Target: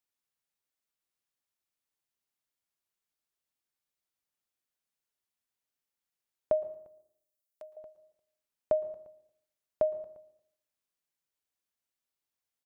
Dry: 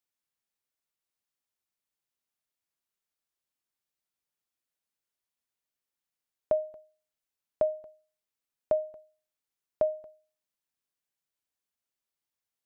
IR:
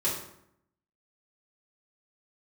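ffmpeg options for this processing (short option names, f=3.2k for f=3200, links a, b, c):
-filter_complex "[0:a]asettb=1/sr,asplit=3[a][b][c];[a]atrim=end=6.634[d];[b]atrim=start=6.63:end=7.77,asetpts=PTS-STARTPTS,afade=t=in:d=0.004:c=qsin,afade=t=out:st=1.136:d=0.004:c=qsin,aderivative[e];[c]atrim=start=7.766[f];[d][e]acrossfade=d=0.004:c1=hsin:c2=qsin[g];[g][f]acrossfade=d=0.004:c1=qsin:c2=hsin,asplit=2[h][i];[i]adelay=349.9,volume=-27dB,highshelf=f=4k:g=-7.87[j];[h][j]amix=inputs=2:normalize=0,asplit=2[k][l];[1:a]atrim=start_sample=2205,adelay=110[m];[l][m]afir=irnorm=-1:irlink=0,volume=-25.5dB[n];[k][n]amix=inputs=2:normalize=0,volume=-1dB"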